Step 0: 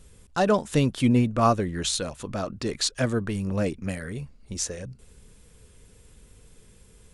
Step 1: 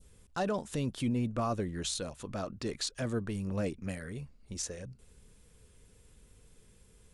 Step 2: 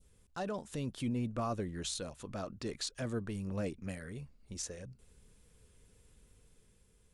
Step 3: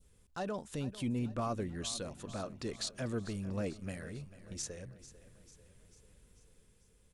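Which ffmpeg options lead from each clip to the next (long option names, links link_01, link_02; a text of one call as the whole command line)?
ffmpeg -i in.wav -af "adynamicequalizer=threshold=0.0112:dfrequency=1800:dqfactor=0.83:tfrequency=1800:tqfactor=0.83:attack=5:release=100:ratio=0.375:range=2:mode=cutabove:tftype=bell,alimiter=limit=-16.5dB:level=0:latency=1:release=15,volume=-7dB" out.wav
ffmpeg -i in.wav -af "dynaudnorm=framelen=180:gausssize=9:maxgain=3dB,volume=-6.5dB" out.wav
ffmpeg -i in.wav -af "aecho=1:1:444|888|1332|1776|2220:0.158|0.0888|0.0497|0.0278|0.0156" out.wav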